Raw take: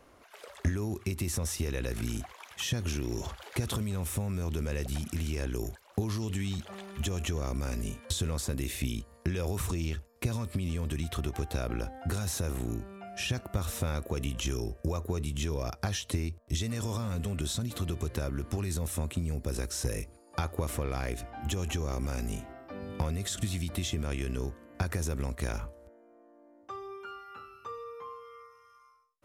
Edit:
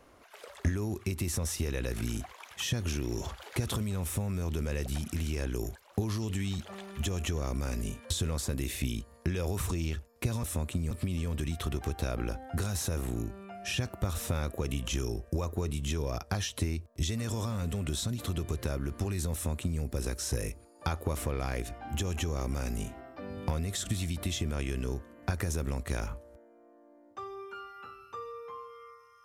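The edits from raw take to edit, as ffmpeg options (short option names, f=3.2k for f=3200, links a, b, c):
-filter_complex "[0:a]asplit=3[a][b][c];[a]atrim=end=10.432[d];[b]atrim=start=18.848:end=19.332[e];[c]atrim=start=10.428[f];[d][e]acrossfade=d=0.004:c1=hsin:c2=hsin[g];[g][f]acrossfade=d=0.004:c1=hsin:c2=hsin"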